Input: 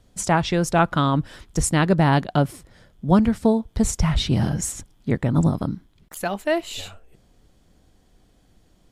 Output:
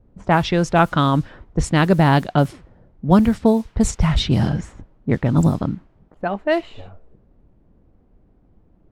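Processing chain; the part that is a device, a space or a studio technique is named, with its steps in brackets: cassette deck with a dynamic noise filter (white noise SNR 30 dB; low-pass opened by the level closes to 420 Hz, open at -14 dBFS); gain +3 dB

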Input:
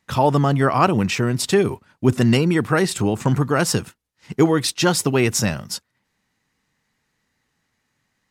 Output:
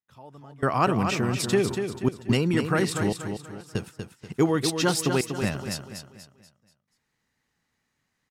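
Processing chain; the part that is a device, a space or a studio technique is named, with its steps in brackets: trance gate with a delay (step gate "...xxxxxxx.xxxx" 72 bpm -24 dB; feedback echo 0.241 s, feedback 39%, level -7 dB); gain -6 dB

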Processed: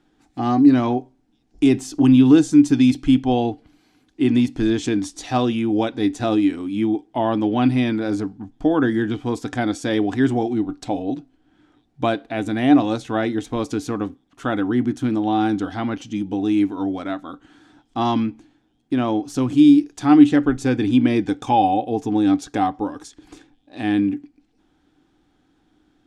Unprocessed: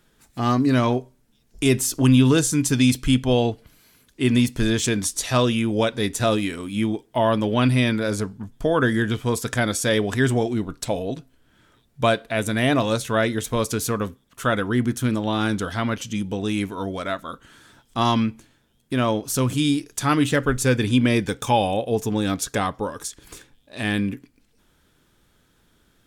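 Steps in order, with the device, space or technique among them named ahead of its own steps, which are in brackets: inside a cardboard box (LPF 5800 Hz 12 dB/oct; small resonant body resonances 300/760 Hz, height 17 dB, ringing for 60 ms); gain -5 dB

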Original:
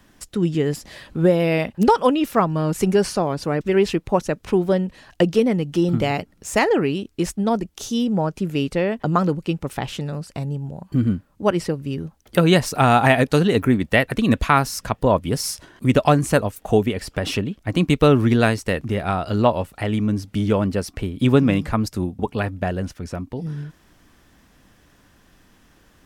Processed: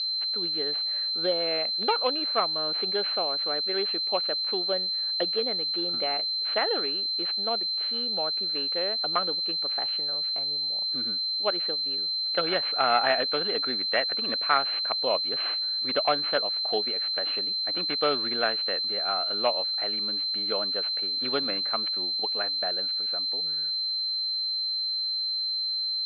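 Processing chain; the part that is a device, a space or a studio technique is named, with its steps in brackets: toy sound module (decimation joined by straight lines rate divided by 4×; pulse-width modulation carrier 4100 Hz; speaker cabinet 790–4600 Hz, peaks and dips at 960 Hz -10 dB, 1900 Hz -3 dB, 3000 Hz +3 dB); gain -1 dB

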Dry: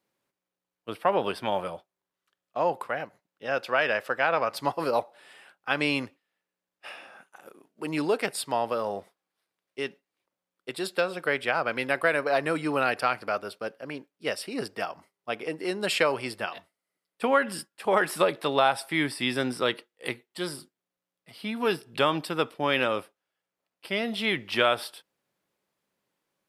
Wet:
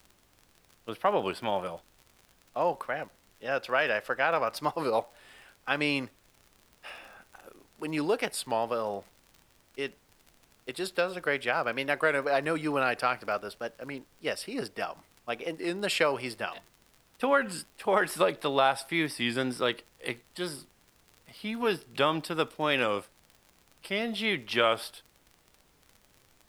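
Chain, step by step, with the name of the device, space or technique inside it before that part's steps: 22.34–23.9 bell 7700 Hz +7.5 dB 0.77 oct; warped LP (record warp 33 1/3 rpm, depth 100 cents; crackle 52/s -39 dBFS; pink noise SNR 33 dB); gain -2 dB

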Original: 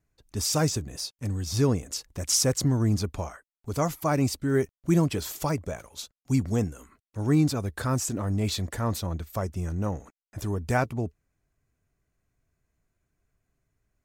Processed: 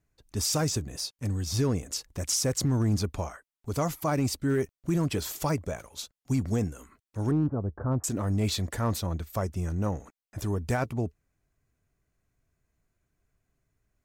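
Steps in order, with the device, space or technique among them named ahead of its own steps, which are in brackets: 7.31–8.04 Bessel low-pass 780 Hz, order 8; limiter into clipper (limiter -17.5 dBFS, peak gain reduction 6.5 dB; hard clip -19 dBFS, distortion -29 dB)

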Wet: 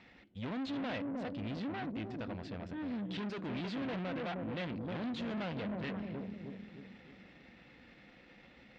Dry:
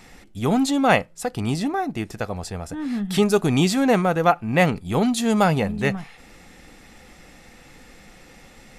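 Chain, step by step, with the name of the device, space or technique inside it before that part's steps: analogue delay pedal into a guitar amplifier (analogue delay 0.31 s, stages 1024, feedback 49%, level -5.5 dB; tube stage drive 29 dB, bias 0.65; speaker cabinet 82–3800 Hz, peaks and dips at 84 Hz -5 dB, 150 Hz -6 dB, 420 Hz -6 dB, 810 Hz -5 dB, 1200 Hz -4 dB); gain -5.5 dB

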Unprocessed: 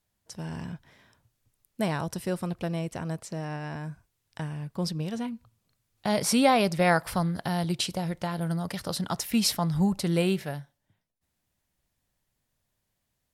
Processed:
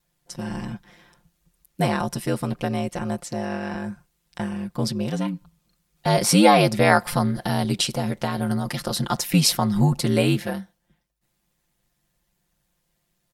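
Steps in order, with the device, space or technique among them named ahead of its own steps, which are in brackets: ring-modulated robot voice (ring modulator 52 Hz; comb 5.7 ms, depth 84%); gain +7 dB

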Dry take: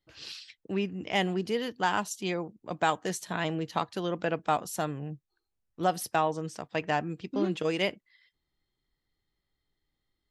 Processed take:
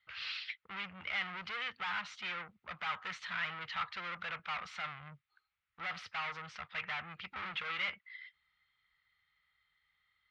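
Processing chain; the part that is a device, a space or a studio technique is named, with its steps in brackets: scooped metal amplifier (tube stage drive 41 dB, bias 0.2; speaker cabinet 110–3400 Hz, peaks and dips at 130 Hz -7 dB, 280 Hz -4 dB, 430 Hz -4 dB, 660 Hz -6 dB, 1300 Hz +10 dB, 2100 Hz +8 dB; passive tone stack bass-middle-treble 10-0-10); gain +11.5 dB

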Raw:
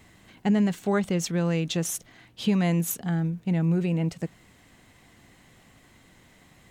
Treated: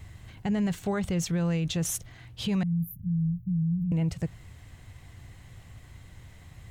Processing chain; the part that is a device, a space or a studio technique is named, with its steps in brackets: car stereo with a boomy subwoofer (resonant low shelf 150 Hz +13 dB, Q 1.5; limiter -21 dBFS, peak gain reduction 7.5 dB); 2.63–3.92 inverse Chebyshev band-stop 380–8700 Hz, stop band 40 dB

